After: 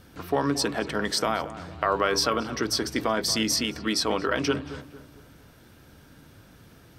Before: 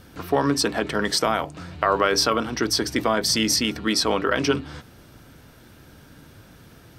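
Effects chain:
feedback echo with a low-pass in the loop 228 ms, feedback 42%, low-pass 2,000 Hz, level −14 dB
level −4 dB

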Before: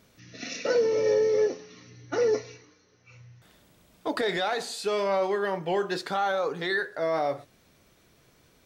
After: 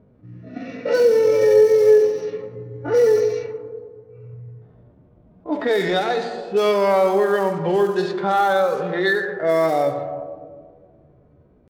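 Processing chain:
one scale factor per block 5 bits
hum removal 169.1 Hz, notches 14
harmonic and percussive parts rebalanced percussive −17 dB
delay with a band-pass on its return 70 ms, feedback 57%, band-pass 420 Hz, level −19 dB
tempo change 0.74×
on a send at −10 dB: moving average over 8 samples + convolution reverb RT60 2.0 s, pre-delay 66 ms
on the sum: low-pass that shuts in the quiet parts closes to 580 Hz, open at −24 dBFS
in parallel at +3 dB: downward compressor, threshold −33 dBFS, peak gain reduction 15 dB
on the sum: level +5.5 dB

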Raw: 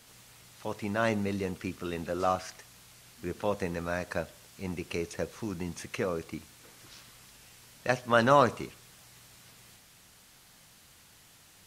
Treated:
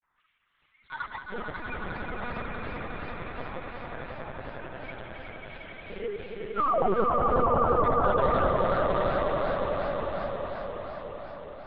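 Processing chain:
spectral dynamics exaggerated over time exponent 3
downward compressor 10 to 1, threshold −36 dBFS, peak gain reduction 16.5 dB
sample-and-hold swept by an LFO 10×, swing 160% 2.2 Hz
auto-filter high-pass sine 0.44 Hz 410–2,300 Hz
sound drawn into the spectrogram fall, 0:06.54–0:06.99, 350–1,700 Hz −29 dBFS
granular cloud
high-frequency loss of the air 130 metres
echo that builds up and dies away 90 ms, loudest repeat 8, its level −6 dB
linear-prediction vocoder at 8 kHz pitch kept
feedback echo with a swinging delay time 404 ms, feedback 57%, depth 220 cents, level −8 dB
level +6 dB

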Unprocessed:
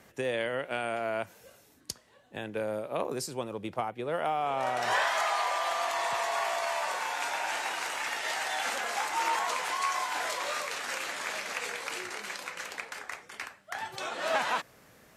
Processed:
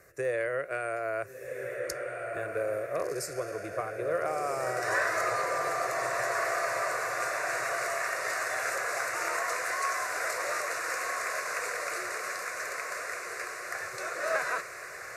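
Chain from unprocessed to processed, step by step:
phaser with its sweep stopped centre 870 Hz, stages 6
feedback delay with all-pass diffusion 1,428 ms, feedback 57%, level −4 dB
level +2 dB

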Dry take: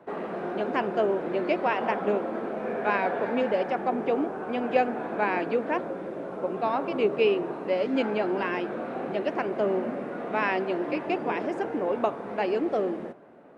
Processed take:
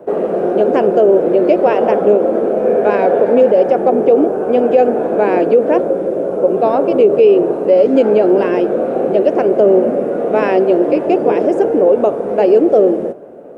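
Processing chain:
octave-band graphic EQ 125/250/500/1,000/2,000/4,000 Hz −4/−3/+8/−9/−10/−9 dB
boost into a limiter +16.5 dB
level −1 dB

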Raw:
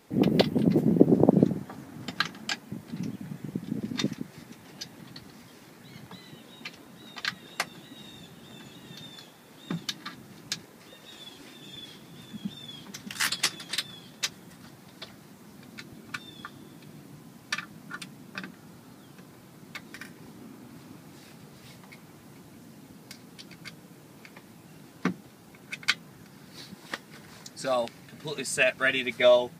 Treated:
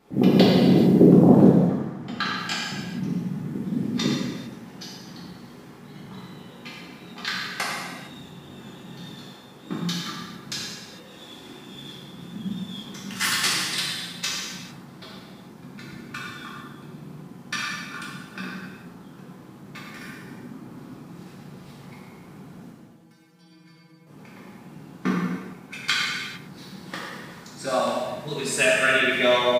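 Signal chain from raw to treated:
0:01.46–0:02.37: low-pass filter 3,300 Hz 6 dB per octave
0:22.71–0:24.07: stiff-string resonator 160 Hz, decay 0.29 s, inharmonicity 0.002
far-end echo of a speakerphone 110 ms, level −9 dB
reverb whose tail is shaped and stops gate 480 ms falling, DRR −6.5 dB
one half of a high-frequency compander decoder only
level −1.5 dB

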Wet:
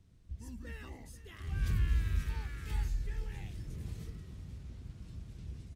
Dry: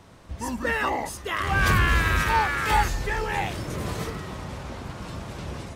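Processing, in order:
guitar amp tone stack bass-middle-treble 10-0-1
notch filter 560 Hz, Q 12
single-tap delay 488 ms −15.5 dB
level +1 dB

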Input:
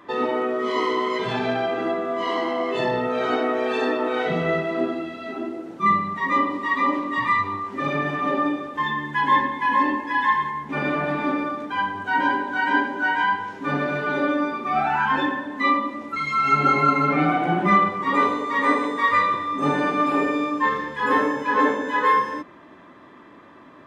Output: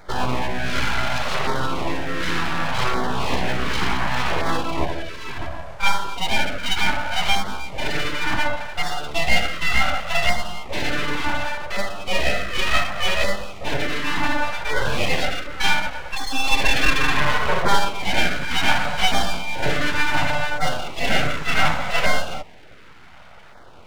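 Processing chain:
full-wave rectification
auto-filter notch saw down 0.68 Hz 230–2,900 Hz
level +5 dB

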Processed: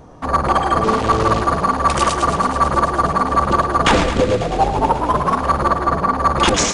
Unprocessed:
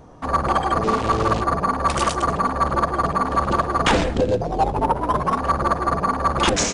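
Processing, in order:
0:05.69–0:06.18: high-frequency loss of the air 88 metres
feedback echo with a high-pass in the loop 109 ms, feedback 85%, high-pass 680 Hz, level −10.5 dB
level +3.5 dB

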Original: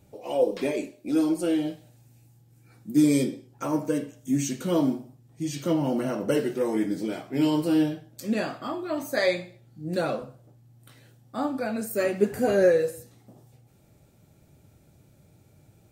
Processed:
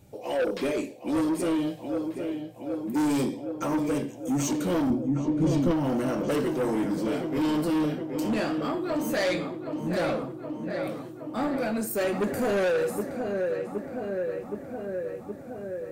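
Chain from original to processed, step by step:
feedback echo with a low-pass in the loop 769 ms, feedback 72%, low-pass 3,200 Hz, level −9.5 dB
soft clipping −25 dBFS, distortion −8 dB
0:04.90–0:05.71: spectral tilt −2.5 dB per octave
level +3 dB

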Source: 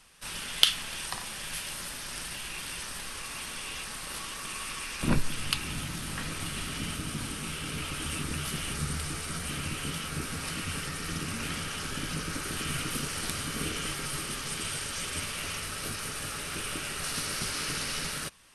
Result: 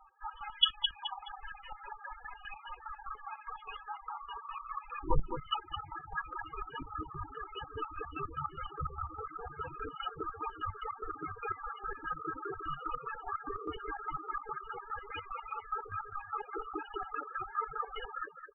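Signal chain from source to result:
low-pass filter 3,500 Hz 6 dB per octave
comb filter 2.4 ms, depth 82%
repeating echo 213 ms, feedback 45%, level −5.5 dB
reverb reduction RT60 1.8 s
parametric band 890 Hz +14.5 dB 2.1 octaves
hum removal 81.34 Hz, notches 2
convolution reverb RT60 0.90 s, pre-delay 4 ms, DRR 18.5 dB
spectral peaks only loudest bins 8
square-wave tremolo 4.9 Hz, depth 65%, duty 45%
level −3.5 dB

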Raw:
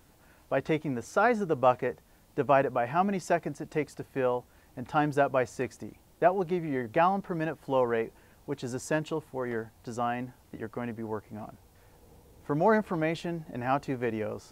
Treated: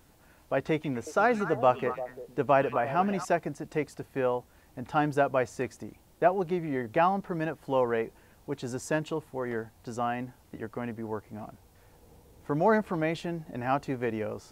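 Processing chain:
0:00.72–0:03.25: echo through a band-pass that steps 115 ms, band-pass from 3,500 Hz, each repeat −1.4 octaves, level −5 dB

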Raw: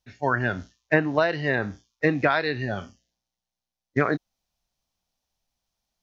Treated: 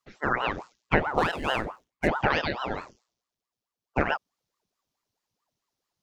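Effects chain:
0:01.08–0:02.08: running median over 9 samples
ring modulator whose carrier an LFO sweeps 650 Hz, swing 85%, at 4.6 Hz

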